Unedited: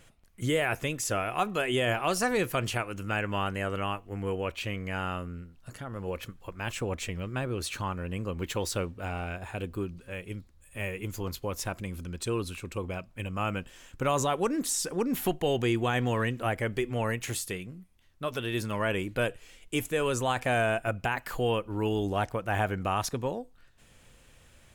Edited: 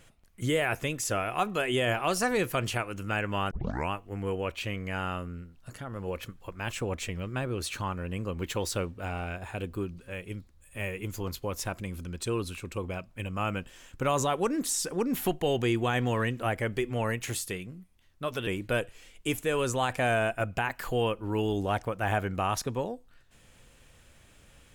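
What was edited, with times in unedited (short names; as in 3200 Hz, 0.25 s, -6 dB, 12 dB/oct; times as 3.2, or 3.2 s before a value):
3.51 tape start 0.40 s
18.47–18.94 cut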